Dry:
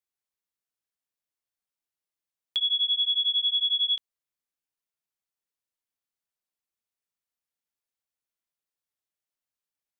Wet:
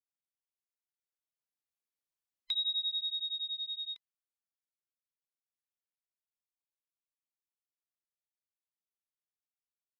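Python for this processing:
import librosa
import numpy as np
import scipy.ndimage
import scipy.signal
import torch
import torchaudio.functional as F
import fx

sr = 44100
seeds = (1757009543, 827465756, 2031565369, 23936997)

y = fx.band_invert(x, sr, width_hz=1000)
y = fx.doppler_pass(y, sr, speed_mps=12, closest_m=7.5, pass_at_s=2.17)
y = F.gain(torch.from_numpy(y), -5.5).numpy()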